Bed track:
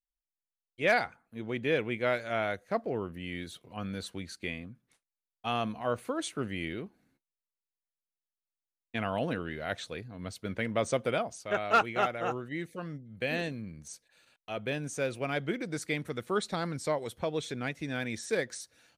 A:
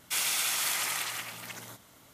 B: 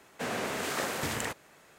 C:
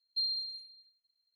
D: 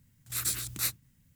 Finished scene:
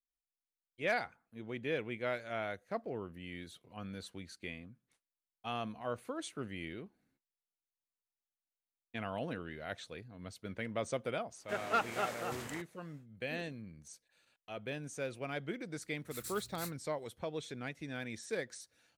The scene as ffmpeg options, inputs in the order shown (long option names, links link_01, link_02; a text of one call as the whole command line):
ffmpeg -i bed.wav -i cue0.wav -i cue1.wav -i cue2.wav -i cue3.wav -filter_complex "[0:a]volume=-7.5dB[link_01];[2:a]atrim=end=1.78,asetpts=PTS-STARTPTS,volume=-12.5dB,afade=type=in:duration=0.1,afade=type=out:start_time=1.68:duration=0.1,adelay=11290[link_02];[4:a]atrim=end=1.35,asetpts=PTS-STARTPTS,volume=-15.5dB,afade=type=in:duration=0.004:curve=hsin,afade=type=out:start_time=1.346:duration=0.004:curve=hsin,adelay=15790[link_03];[link_01][link_02][link_03]amix=inputs=3:normalize=0" out.wav